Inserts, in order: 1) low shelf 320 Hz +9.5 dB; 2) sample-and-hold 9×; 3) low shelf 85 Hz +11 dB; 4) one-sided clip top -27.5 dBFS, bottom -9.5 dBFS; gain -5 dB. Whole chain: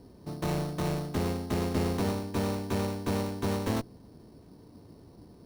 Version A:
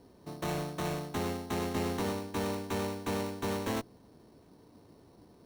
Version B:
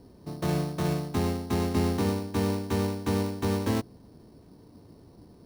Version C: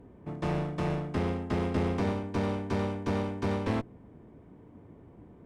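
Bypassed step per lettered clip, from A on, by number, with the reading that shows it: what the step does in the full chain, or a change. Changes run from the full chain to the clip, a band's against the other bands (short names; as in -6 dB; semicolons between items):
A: 1, 125 Hz band -6.0 dB; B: 4, distortion -8 dB; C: 2, 4 kHz band -5.0 dB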